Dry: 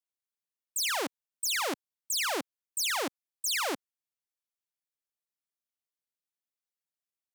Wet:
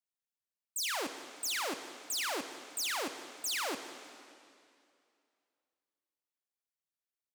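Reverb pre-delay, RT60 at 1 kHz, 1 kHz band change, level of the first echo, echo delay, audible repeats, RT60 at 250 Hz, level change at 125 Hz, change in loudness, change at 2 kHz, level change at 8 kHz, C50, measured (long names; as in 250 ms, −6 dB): 5 ms, 2.4 s, −4.5 dB, −20.0 dB, 201 ms, 1, 2.4 s, can't be measured, −4.5 dB, −4.5 dB, −4.5 dB, 9.0 dB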